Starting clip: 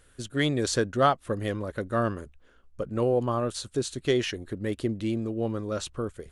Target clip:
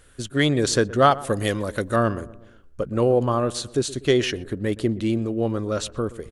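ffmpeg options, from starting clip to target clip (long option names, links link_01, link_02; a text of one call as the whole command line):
ffmpeg -i in.wav -filter_complex "[0:a]asettb=1/sr,asplit=3[link_01][link_02][link_03];[link_01]atrim=end=1.114[link_04];[link_02]atrim=start=1.11:end=1.96,asetpts=PTS-STARTPTS,afade=type=in:duration=0.004:curve=qsin,afade=type=out:start_time=0.846:duration=0.004:curve=qsin,highshelf=frequency=3100:gain=11.5[link_05];[link_03]atrim=start=1.956[link_06];[link_04][link_05]acrossfade=duration=0.004:curve1=hsin:curve2=qsin[link_07];[link_07][link_06]acrossfade=duration=0.004:curve1=qsin:curve2=hsin,asplit=2[link_08][link_09];[link_09]adelay=122,lowpass=frequency=1200:poles=1,volume=-17.5dB,asplit=2[link_10][link_11];[link_11]adelay=122,lowpass=frequency=1200:poles=1,volume=0.52,asplit=2[link_12][link_13];[link_13]adelay=122,lowpass=frequency=1200:poles=1,volume=0.52,asplit=2[link_14][link_15];[link_15]adelay=122,lowpass=frequency=1200:poles=1,volume=0.52[link_16];[link_10][link_12][link_14][link_16]amix=inputs=4:normalize=0[link_17];[link_08][link_17]amix=inputs=2:normalize=0,volume=5.5dB" out.wav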